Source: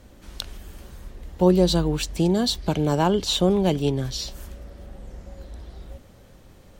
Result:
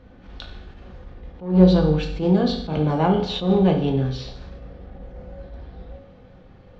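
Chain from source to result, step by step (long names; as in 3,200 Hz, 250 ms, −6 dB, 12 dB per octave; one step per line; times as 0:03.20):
in parallel at −3 dB: gain into a clipping stage and back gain 15 dB
on the sum: Gaussian smoothing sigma 2.4 samples
convolution reverb RT60 0.70 s, pre-delay 3 ms, DRR 0.5 dB
level that may rise only so fast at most 140 dB per second
level −4.5 dB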